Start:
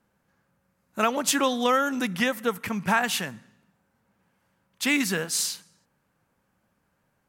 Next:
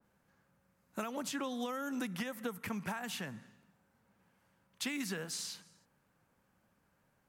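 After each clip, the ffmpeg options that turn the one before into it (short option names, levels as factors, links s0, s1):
-filter_complex "[0:a]alimiter=limit=0.133:level=0:latency=1:release=241,acrossover=split=250|6800[s0][s1][s2];[s0]acompressor=threshold=0.00891:ratio=4[s3];[s1]acompressor=threshold=0.0158:ratio=4[s4];[s2]acompressor=threshold=0.00501:ratio=4[s5];[s3][s4][s5]amix=inputs=3:normalize=0,adynamicequalizer=threshold=0.00398:dfrequency=1900:dqfactor=0.7:tfrequency=1900:tqfactor=0.7:attack=5:release=100:ratio=0.375:range=1.5:mode=cutabove:tftype=highshelf,volume=0.75"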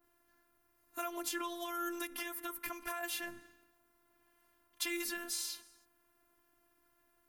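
-filter_complex "[0:a]acrossover=split=630[s0][s1];[s0]alimiter=level_in=5.31:limit=0.0631:level=0:latency=1,volume=0.188[s2];[s2][s1]amix=inputs=2:normalize=0,aexciter=amount=1.4:drive=9.5:freq=10000,afftfilt=real='hypot(re,im)*cos(PI*b)':imag='0':win_size=512:overlap=0.75,volume=1.68"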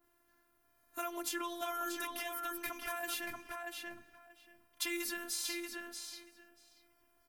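-filter_complex "[0:a]asplit=2[s0][s1];[s1]adelay=634,lowpass=f=4600:p=1,volume=0.708,asplit=2[s2][s3];[s3]adelay=634,lowpass=f=4600:p=1,volume=0.16,asplit=2[s4][s5];[s5]adelay=634,lowpass=f=4600:p=1,volume=0.16[s6];[s0][s2][s4][s6]amix=inputs=4:normalize=0"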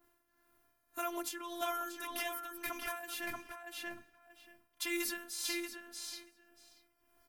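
-af "tremolo=f=1.8:d=0.67,volume=1.41"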